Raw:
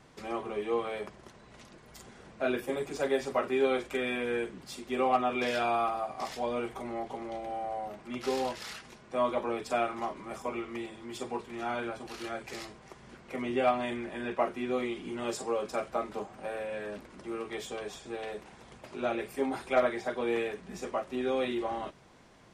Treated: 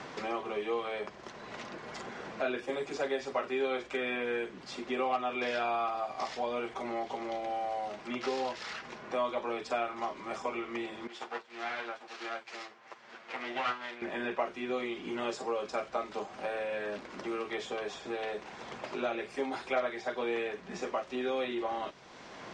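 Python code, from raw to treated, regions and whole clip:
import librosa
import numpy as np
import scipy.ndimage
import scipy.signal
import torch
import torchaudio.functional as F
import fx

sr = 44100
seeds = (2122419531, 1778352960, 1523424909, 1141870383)

y = fx.chain(x, sr, fx.lower_of_two(delay_ms=8.8),
    fx.weighting(curve='A'),
    fx.upward_expand(threshold_db=-57.0, expansion=1.5), at=(11.07, 14.02))
y = scipy.signal.sosfilt(scipy.signal.butter(4, 6500.0, 'lowpass', fs=sr, output='sos'), y)
y = fx.low_shelf(y, sr, hz=250.0, db=-10.5)
y = fx.band_squash(y, sr, depth_pct=70)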